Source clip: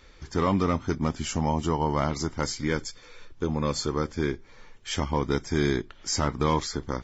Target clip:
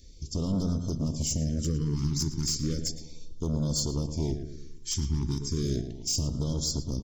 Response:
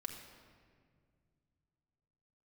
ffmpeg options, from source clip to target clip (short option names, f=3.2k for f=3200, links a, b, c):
-filter_complex "[0:a]firequalizer=gain_entry='entry(120,0);entry(240,-3);entry(890,-29);entry(5100,2)':delay=0.05:min_phase=1,alimiter=limit=-21dB:level=0:latency=1:release=37,asoftclip=type=hard:threshold=-28dB,asuperstop=centerf=780:order=4:qfactor=6.9,asplit=2[a][b];[b]adelay=113,lowpass=f=2.5k:p=1,volume=-8.5dB,asplit=2[c][d];[d]adelay=113,lowpass=f=2.5k:p=1,volume=0.5,asplit=2[e][f];[f]adelay=113,lowpass=f=2.5k:p=1,volume=0.5,asplit=2[g][h];[h]adelay=113,lowpass=f=2.5k:p=1,volume=0.5,asplit=2[i][j];[j]adelay=113,lowpass=f=2.5k:p=1,volume=0.5,asplit=2[k][l];[l]adelay=113,lowpass=f=2.5k:p=1,volume=0.5[m];[a][c][e][g][i][k][m]amix=inputs=7:normalize=0,afftfilt=real='re*(1-between(b*sr/1024,550*pow(2200/550,0.5+0.5*sin(2*PI*0.34*pts/sr))/1.41,550*pow(2200/550,0.5+0.5*sin(2*PI*0.34*pts/sr))*1.41))':imag='im*(1-between(b*sr/1024,550*pow(2200/550,0.5+0.5*sin(2*PI*0.34*pts/sr))/1.41,550*pow(2200/550,0.5+0.5*sin(2*PI*0.34*pts/sr))*1.41))':win_size=1024:overlap=0.75,volume=4dB"